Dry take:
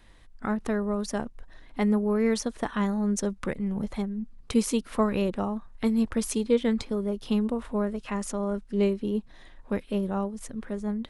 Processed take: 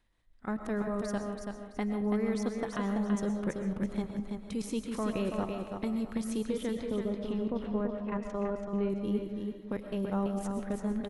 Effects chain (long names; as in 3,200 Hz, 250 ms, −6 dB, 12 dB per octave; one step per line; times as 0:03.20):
camcorder AGC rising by 6.8 dB per second
noise gate −38 dBFS, range −9 dB
0:06.78–0:08.90: Bessel low-pass filter 2,300 Hz, order 2
output level in coarse steps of 14 dB
repeating echo 332 ms, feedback 30%, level −5.5 dB
comb and all-pass reverb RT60 0.6 s, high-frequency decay 0.55×, pre-delay 85 ms, DRR 7 dB
level −3.5 dB